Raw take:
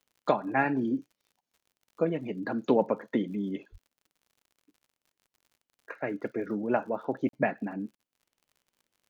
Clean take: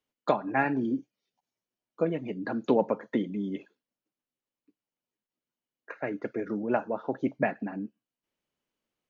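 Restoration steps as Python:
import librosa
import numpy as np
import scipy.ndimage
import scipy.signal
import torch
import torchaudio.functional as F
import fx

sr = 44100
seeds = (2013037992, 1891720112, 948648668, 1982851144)

y = fx.fix_declick_ar(x, sr, threshold=6.5)
y = fx.highpass(y, sr, hz=140.0, slope=24, at=(3.71, 3.83), fade=0.02)
y = fx.fix_interpolate(y, sr, at_s=(7.29, 7.95), length_ms=42.0)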